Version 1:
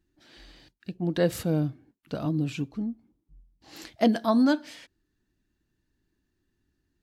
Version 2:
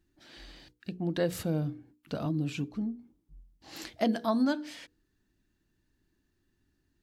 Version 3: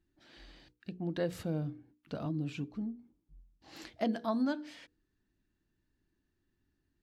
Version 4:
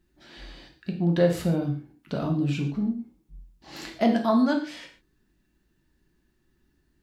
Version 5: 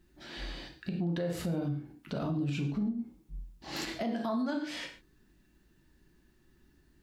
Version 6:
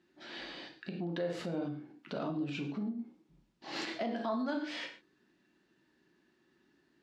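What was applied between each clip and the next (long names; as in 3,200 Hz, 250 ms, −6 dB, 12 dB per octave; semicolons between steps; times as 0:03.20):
mains-hum notches 60/120/180/240/300/360/420/480 Hz; downward compressor 1.5 to 1, threshold −37 dBFS, peak gain reduction 7.5 dB; level +1.5 dB
high-shelf EQ 6,600 Hz −10 dB; level −4.5 dB
convolution reverb, pre-delay 3 ms, DRR 2 dB; level +8.5 dB
downward compressor 4 to 1, threshold −32 dBFS, peak gain reduction 14 dB; brickwall limiter −28.5 dBFS, peak gain reduction 8 dB; level +3.5 dB
band-pass filter 260–4,800 Hz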